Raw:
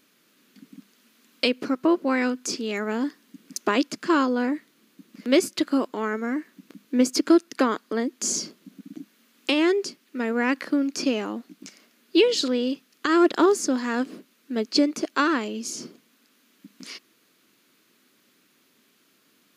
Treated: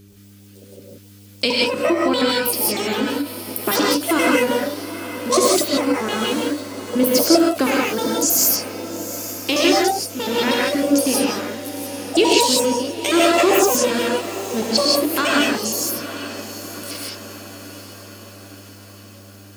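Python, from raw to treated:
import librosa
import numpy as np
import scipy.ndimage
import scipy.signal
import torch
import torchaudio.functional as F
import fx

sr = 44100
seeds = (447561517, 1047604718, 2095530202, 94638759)

y = fx.pitch_trill(x, sr, semitones=11.5, every_ms=79)
y = fx.low_shelf(y, sr, hz=450.0, db=6.0)
y = fx.dmg_buzz(y, sr, base_hz=100.0, harmonics=4, level_db=-45.0, tilt_db=-4, odd_only=False)
y = fx.high_shelf(y, sr, hz=3800.0, db=11.5)
y = fx.echo_diffused(y, sr, ms=834, feedback_pct=58, wet_db=-13)
y = fx.rev_gated(y, sr, seeds[0], gate_ms=200, shape='rising', drr_db=-3.5)
y = fx.end_taper(y, sr, db_per_s=180.0)
y = y * 10.0 ** (-2.0 / 20.0)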